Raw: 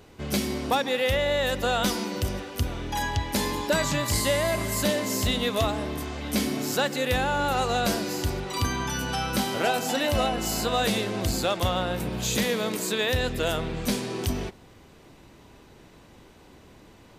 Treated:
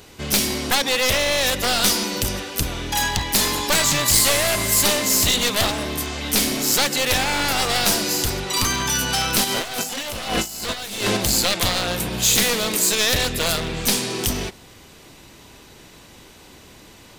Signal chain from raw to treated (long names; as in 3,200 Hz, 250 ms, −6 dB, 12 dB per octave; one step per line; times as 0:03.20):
wavefolder on the positive side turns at −25 dBFS
high-shelf EQ 2,200 Hz +11.5 dB
0:09.44–0:11.17: compressor whose output falls as the input rises −28 dBFS, ratio −0.5
level +3.5 dB